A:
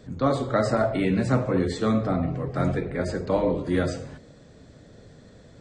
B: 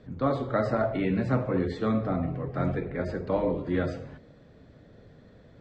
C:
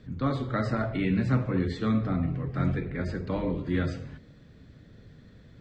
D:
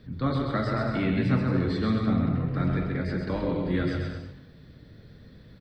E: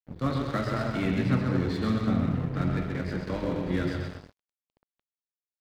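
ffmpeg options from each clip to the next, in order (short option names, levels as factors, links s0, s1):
-af "lowpass=3200,volume=0.668"
-af "equalizer=f=640:w=0.75:g=-11.5,volume=1.58"
-filter_complex "[0:a]asplit=2[s0][s1];[s1]aecho=0:1:130|221|284.7|329.3|360.5:0.631|0.398|0.251|0.158|0.1[s2];[s0][s2]amix=inputs=2:normalize=0,aexciter=amount=1:drive=4.6:freq=3800"
-af "aeval=exprs='sgn(val(0))*max(abs(val(0))-0.0119,0)':c=same"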